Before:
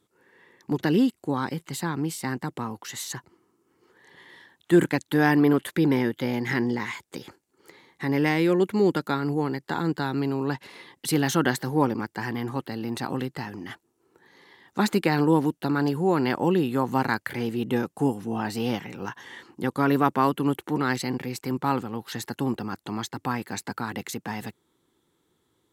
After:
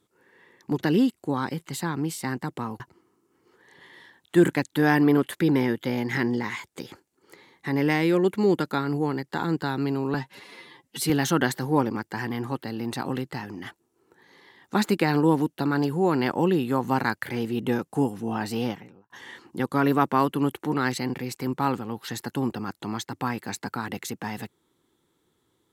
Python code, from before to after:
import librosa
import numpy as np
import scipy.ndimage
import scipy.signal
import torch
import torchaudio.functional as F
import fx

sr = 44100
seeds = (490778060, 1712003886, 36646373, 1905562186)

y = fx.studio_fade_out(x, sr, start_s=18.59, length_s=0.55)
y = fx.edit(y, sr, fx.cut(start_s=2.8, length_s=0.36),
    fx.stretch_span(start_s=10.5, length_s=0.64, factor=1.5), tone=tone)